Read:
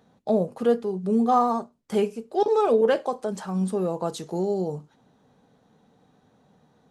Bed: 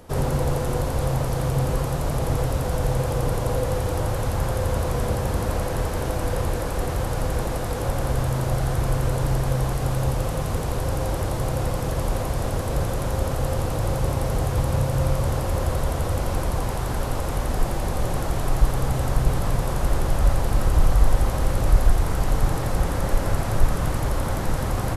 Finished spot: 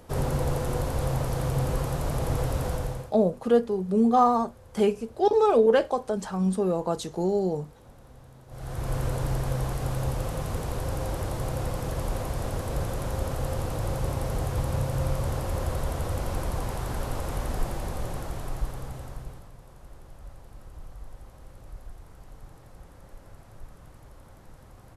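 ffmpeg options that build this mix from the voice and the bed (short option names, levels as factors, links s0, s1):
-filter_complex "[0:a]adelay=2850,volume=1.06[s0];[1:a]volume=7.94,afade=t=out:st=2.67:d=0.46:silence=0.0668344,afade=t=in:st=8.48:d=0.5:silence=0.0794328,afade=t=out:st=17.46:d=2.04:silence=0.0944061[s1];[s0][s1]amix=inputs=2:normalize=0"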